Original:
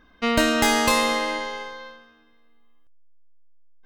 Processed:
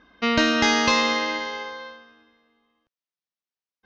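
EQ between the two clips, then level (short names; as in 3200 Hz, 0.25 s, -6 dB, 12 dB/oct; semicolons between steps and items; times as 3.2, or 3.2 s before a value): HPF 120 Hz 6 dB/oct; steep low-pass 6300 Hz 72 dB/oct; dynamic EQ 660 Hz, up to -5 dB, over -35 dBFS, Q 1.2; +2.0 dB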